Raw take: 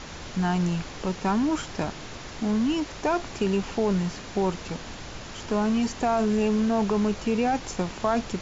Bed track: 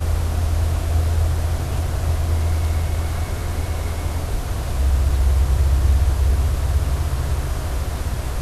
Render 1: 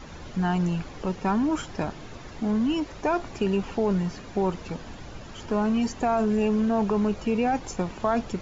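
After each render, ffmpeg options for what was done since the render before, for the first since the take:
-af "afftdn=nr=9:nf=-40"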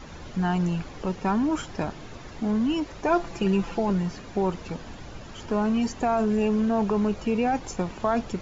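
-filter_complex "[0:a]asettb=1/sr,asplit=3[s0][s1][s2];[s0]atrim=end=3.084[s3];[s1]atrim=start=3.08:end=3.9,asetpts=PTS-STARTPTS,afade=t=in:d=0.004:c=qsin,afade=t=out:st=0.816:d=0.004:c=qsin,aecho=1:1:5.9:0.64,atrim=end_sample=36162[s4];[s2]atrim=start=3.896[s5];[s3][s4]acrossfade=d=0.004:c1=hsin:c2=qsin[s6];[s6][s5]acrossfade=d=0.004:c1=qsin:c2=hsin"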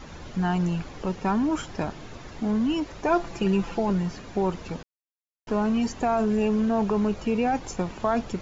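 -filter_complex "[0:a]asplit=3[s0][s1][s2];[s0]atrim=end=4.83,asetpts=PTS-STARTPTS,afade=t=out:st=4.826:d=0.004:c=hsin[s3];[s1]atrim=start=4.83:end=5.47,asetpts=PTS-STARTPTS,volume=0[s4];[s2]atrim=start=5.47,asetpts=PTS-STARTPTS,afade=t=in:d=0.004:c=hsin[s5];[s3][s4][s5]concat=n=3:v=0:a=1"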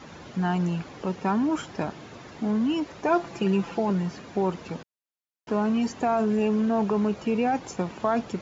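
-af "highpass=120,highshelf=f=5300:g=-4"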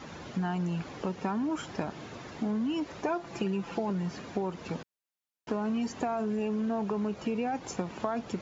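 -af "acompressor=threshold=0.0398:ratio=6"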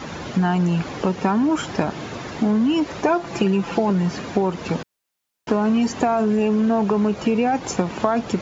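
-af "volume=3.98"

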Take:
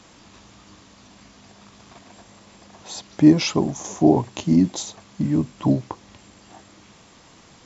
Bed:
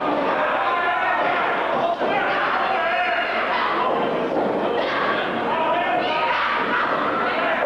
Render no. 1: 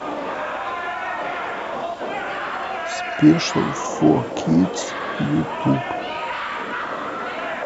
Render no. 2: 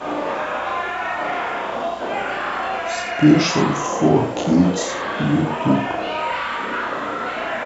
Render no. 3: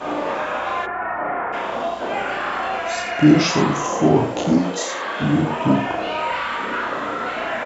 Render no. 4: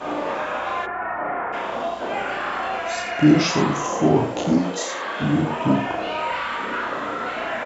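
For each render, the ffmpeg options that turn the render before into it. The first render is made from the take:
-filter_complex "[1:a]volume=0.501[s0];[0:a][s0]amix=inputs=2:normalize=0"
-filter_complex "[0:a]asplit=2[s0][s1];[s1]adelay=34,volume=0.75[s2];[s0][s2]amix=inputs=2:normalize=0,aecho=1:1:84:0.376"
-filter_complex "[0:a]asplit=3[s0][s1][s2];[s0]afade=t=out:st=0.85:d=0.02[s3];[s1]lowpass=f=1800:w=0.5412,lowpass=f=1800:w=1.3066,afade=t=in:st=0.85:d=0.02,afade=t=out:st=1.52:d=0.02[s4];[s2]afade=t=in:st=1.52:d=0.02[s5];[s3][s4][s5]amix=inputs=3:normalize=0,asettb=1/sr,asplit=3[s6][s7][s8];[s6]atrim=end=4.584[s9];[s7]atrim=start=4.58:end=5.22,asetpts=PTS-STARTPTS,afade=t=in:d=0.004:c=qsin,afade=t=out:st=0.636:d=0.004:c=qsin,highpass=f=490:p=1[s10];[s8]atrim=start=5.216[s11];[s9][s10]acrossfade=d=0.004:c1=hsin:c2=qsin[s12];[s12][s11]acrossfade=d=0.004:c1=qsin:c2=hsin"
-af "volume=0.794"

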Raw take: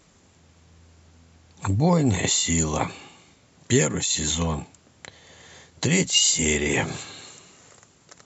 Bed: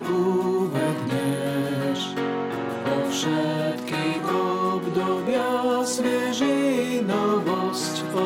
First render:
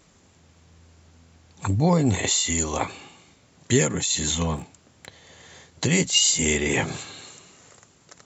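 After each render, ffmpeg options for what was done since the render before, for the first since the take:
-filter_complex "[0:a]asettb=1/sr,asplit=3[s0][s1][s2];[s0]atrim=end=2.154[s3];[s1]atrim=start=2.15:end=2.92,asetpts=PTS-STARTPTS,afade=t=in:d=0.004:c=qsin,afade=t=out:st=0.766:d=0.004:c=qsin,equalizer=f=160:w=1.5:g=-9.5[s4];[s2]atrim=start=2.916[s5];[s3][s4]acrossfade=d=0.004:c1=hsin:c2=qsin[s6];[s6][s5]acrossfade=d=0.004:c1=qsin:c2=hsin,asettb=1/sr,asplit=3[s7][s8][s9];[s7]atrim=end=4.564[s10];[s8]atrim=start=4.56:end=5.07,asetpts=PTS-STARTPTS,afade=t=in:d=0.004:c=qsin,afade=t=out:st=0.506:d=0.004:c=qsin,asoftclip=type=hard:threshold=0.0266[s11];[s9]atrim=start=5.066[s12];[s10][s11]acrossfade=d=0.004:c1=hsin:c2=qsin[s13];[s13][s12]acrossfade=d=0.004:c1=qsin:c2=hsin"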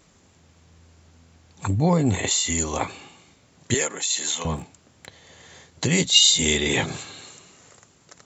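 -filter_complex "[0:a]asettb=1/sr,asplit=3[s0][s1][s2];[s0]atrim=end=1.684[s3];[s1]atrim=start=1.68:end=2.31,asetpts=PTS-STARTPTS,afade=t=in:d=0.004:c=qsin,afade=t=out:st=0.626:d=0.004:c=qsin,equalizer=f=5300:w=3:g=-7[s4];[s2]atrim=start=2.306[s5];[s3][s4]acrossfade=d=0.004:c1=hsin:c2=qsin[s6];[s6][s5]acrossfade=d=0.004:c1=qsin:c2=hsin,asettb=1/sr,asplit=3[s7][s8][s9];[s7]atrim=end=3.744[s10];[s8]atrim=start=3.74:end=4.45,asetpts=PTS-STARTPTS,afade=t=in:d=0.004:c=qsin,afade=t=out:st=0.706:d=0.004:c=qsin,highpass=520[s11];[s9]atrim=start=4.446[s12];[s10][s11]acrossfade=d=0.004:c1=hsin:c2=qsin[s13];[s13][s12]acrossfade=d=0.004:c1=qsin:c2=hsin,asettb=1/sr,asplit=3[s14][s15][s16];[s14]atrim=end=5.984[s17];[s15]atrim=start=5.98:end=6.86,asetpts=PTS-STARTPTS,afade=t=in:d=0.004:c=qsin,afade=t=out:st=0.876:d=0.004:c=qsin,equalizer=f=3700:t=o:w=0.27:g=15[s18];[s16]atrim=start=6.856[s19];[s17][s18]acrossfade=d=0.004:c1=hsin:c2=qsin[s20];[s20][s19]acrossfade=d=0.004:c1=qsin:c2=hsin"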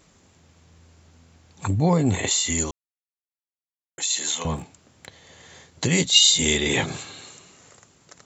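-filter_complex "[0:a]asplit=3[s0][s1][s2];[s0]atrim=end=2.71,asetpts=PTS-STARTPTS,afade=t=out:st=2.706:d=0.004:c=hsin[s3];[s1]atrim=start=2.71:end=3.98,asetpts=PTS-STARTPTS,volume=0[s4];[s2]atrim=start=3.98,asetpts=PTS-STARTPTS,afade=t=in:d=0.004:c=hsin[s5];[s3][s4][s5]concat=n=3:v=0:a=1"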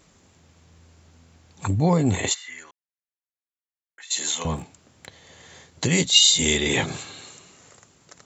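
-filter_complex "[0:a]asplit=3[s0][s1][s2];[s0]afade=t=out:st=2.33:d=0.02[s3];[s1]bandpass=f=1700:t=q:w=3.5,afade=t=in:st=2.33:d=0.02,afade=t=out:st=4.1:d=0.02[s4];[s2]afade=t=in:st=4.1:d=0.02[s5];[s3][s4][s5]amix=inputs=3:normalize=0"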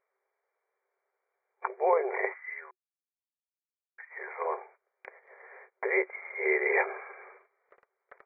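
-af "afftfilt=real='re*between(b*sr/4096,370,2400)':imag='im*between(b*sr/4096,370,2400)':win_size=4096:overlap=0.75,agate=range=0.112:threshold=0.00224:ratio=16:detection=peak"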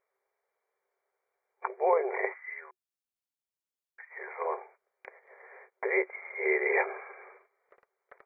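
-af "equalizer=f=1500:w=1.5:g=-2"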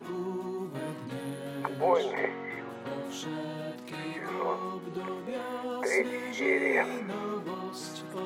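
-filter_complex "[1:a]volume=0.224[s0];[0:a][s0]amix=inputs=2:normalize=0"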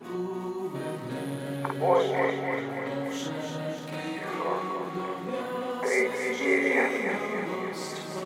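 -filter_complex "[0:a]asplit=2[s0][s1];[s1]adelay=50,volume=0.794[s2];[s0][s2]amix=inputs=2:normalize=0,asplit=2[s3][s4];[s4]aecho=0:1:289|578|867|1156|1445|1734|2023|2312:0.473|0.274|0.159|0.0923|0.0535|0.0311|0.018|0.0104[s5];[s3][s5]amix=inputs=2:normalize=0"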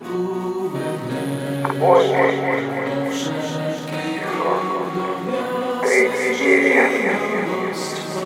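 -af "volume=2.99,alimiter=limit=0.794:level=0:latency=1"

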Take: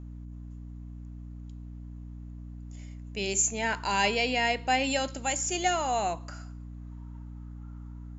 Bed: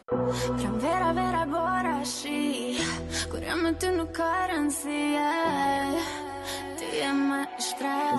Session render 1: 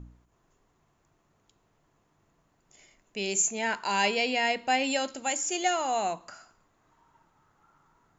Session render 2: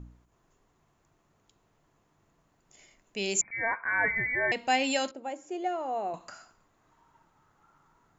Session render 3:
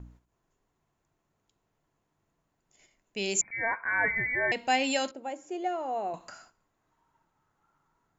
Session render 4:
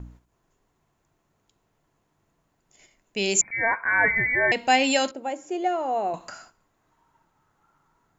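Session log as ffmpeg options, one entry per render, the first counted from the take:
-af "bandreject=f=60:t=h:w=4,bandreject=f=120:t=h:w=4,bandreject=f=180:t=h:w=4,bandreject=f=240:t=h:w=4,bandreject=f=300:t=h:w=4"
-filter_complex "[0:a]asettb=1/sr,asplit=3[s0][s1][s2];[s0]atrim=end=3.414[s3];[s1]atrim=start=3.41:end=4.52,asetpts=PTS-STARTPTS,afade=t=in:d=0.004:c=qsin,afade=t=out:st=1.106:d=0.004:c=qsin,lowpass=f=2100:t=q:w=0.5098,lowpass=f=2100:t=q:w=0.6013,lowpass=f=2100:t=q:w=0.9,lowpass=f=2100:t=q:w=2.563,afreqshift=-2500[s4];[s2]atrim=start=4.516[s5];[s3][s4]acrossfade=d=0.004:c1=hsin:c2=qsin[s6];[s6][s5]acrossfade=d=0.004:c1=qsin:c2=hsin,asettb=1/sr,asplit=3[s7][s8][s9];[s7]atrim=end=5.114[s10];[s8]atrim=start=5.11:end=6.14,asetpts=PTS-STARTPTS,afade=t=in:d=0.004:c=qsin,afade=t=out:st=1.026:d=0.004:c=qsin,bandpass=f=430:t=q:w=1.1[s11];[s9]atrim=start=6.136[s12];[s10][s11]acrossfade=d=0.004:c1=hsin:c2=qsin[s13];[s13][s12]acrossfade=d=0.004:c1=qsin:c2=hsin"
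-af "agate=range=0.398:threshold=0.00158:ratio=16:detection=peak,bandreject=f=1200:w=19"
-af "volume=2.11"

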